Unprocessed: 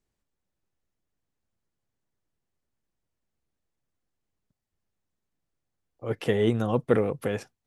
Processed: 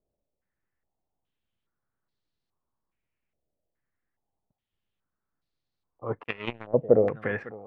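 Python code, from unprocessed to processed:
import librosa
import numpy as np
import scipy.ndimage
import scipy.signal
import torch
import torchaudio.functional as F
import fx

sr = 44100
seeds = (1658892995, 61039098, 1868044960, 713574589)

y = x + 10.0 ** (-18.0 / 20.0) * np.pad(x, (int(554 * sr / 1000.0), 0))[:len(x)]
y = fx.power_curve(y, sr, exponent=3.0, at=(6.23, 6.74))
y = fx.filter_held_lowpass(y, sr, hz=2.4, low_hz=610.0, high_hz=4200.0)
y = y * 10.0 ** (-3.0 / 20.0)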